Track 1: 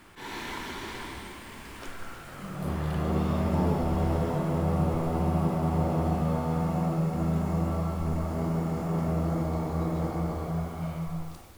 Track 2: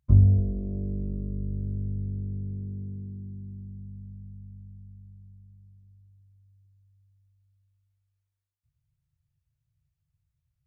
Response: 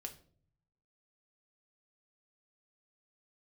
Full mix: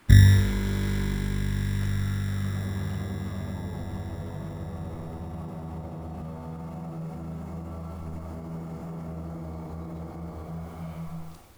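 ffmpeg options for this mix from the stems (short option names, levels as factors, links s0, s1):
-filter_complex "[0:a]alimiter=level_in=1.26:limit=0.0631:level=0:latency=1:release=66,volume=0.794,acrossover=split=240[s0][s1];[s1]acompressor=threshold=0.0126:ratio=6[s2];[s0][s2]amix=inputs=2:normalize=0,volume=0.75[s3];[1:a]acrusher=samples=24:mix=1:aa=0.000001,volume=1.26,asplit=2[s4][s5];[s5]volume=0.668[s6];[2:a]atrim=start_sample=2205[s7];[s6][s7]afir=irnorm=-1:irlink=0[s8];[s3][s4][s8]amix=inputs=3:normalize=0"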